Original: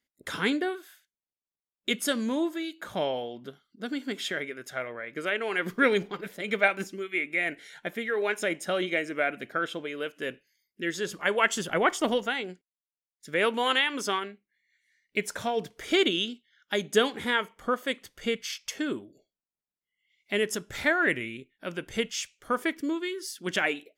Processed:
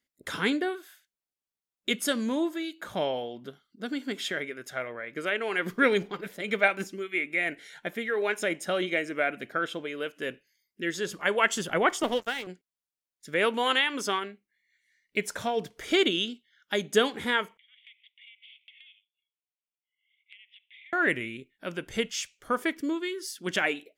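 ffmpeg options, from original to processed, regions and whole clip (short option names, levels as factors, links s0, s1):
-filter_complex "[0:a]asettb=1/sr,asplit=3[s0][s1][s2];[s0]atrim=end=12.034[s3];[s1]atrim=start=12.03:end=12.47,asetpts=PTS-STARTPTS,afade=t=in:d=0.004:c=qsin,afade=t=out:st=0.436:d=0.004:c=qsin,highpass=220,aeval=exprs='sgn(val(0))*max(abs(val(0))-0.01,0)':c=same[s4];[s2]atrim=start=12.466[s5];[s3][s4]acrossfade=d=0.004:c1=hsin:c2=qsin[s6];[s6][s5]acrossfade=d=0.004:c1=qsin:c2=hsin,asettb=1/sr,asplit=3[s7][s8][s9];[s7]atrim=end=17.574[s10];[s8]atrim=start=17.57:end=20.93,asetpts=PTS-STARTPTS,afade=t=in:d=0.004:c=qsin,afade=t=out:st=3.356:d=0.004:c=qsin,asuperpass=centerf=2700:order=12:qfactor=1.8,acompressor=threshold=0.00355:ratio=8:attack=3.2:release=140:knee=1:detection=peak[s11];[s9]atrim=start=20.926[s12];[s10][s11]acrossfade=d=0.004:c1=hsin:c2=qsin[s13];[s13][s12]acrossfade=d=0.004:c1=qsin:c2=hsin"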